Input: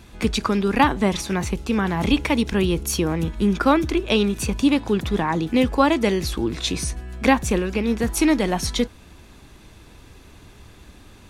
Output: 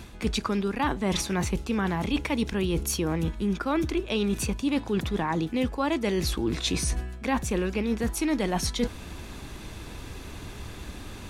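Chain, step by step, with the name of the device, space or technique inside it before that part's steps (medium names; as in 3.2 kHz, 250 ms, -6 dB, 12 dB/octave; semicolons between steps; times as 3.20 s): compression on the reversed sound (reverse; compression 6:1, threshold -31 dBFS, peak gain reduction 19 dB; reverse); trim +6.5 dB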